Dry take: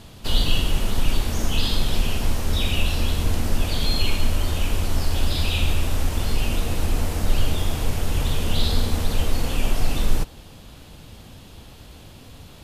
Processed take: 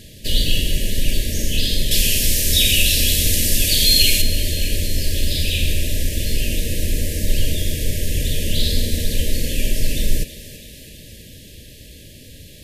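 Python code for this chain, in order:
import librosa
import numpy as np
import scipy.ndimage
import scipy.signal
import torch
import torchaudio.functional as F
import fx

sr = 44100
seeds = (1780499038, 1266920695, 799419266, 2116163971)

y = fx.high_shelf(x, sr, hz=2400.0, db=11.5, at=(1.91, 4.22))
y = fx.brickwall_bandstop(y, sr, low_hz=650.0, high_hz=1600.0)
y = fx.high_shelf(y, sr, hz=4900.0, db=8.0)
y = fx.echo_thinned(y, sr, ms=328, feedback_pct=66, hz=190.0, wet_db=-14.0)
y = y * librosa.db_to_amplitude(1.5)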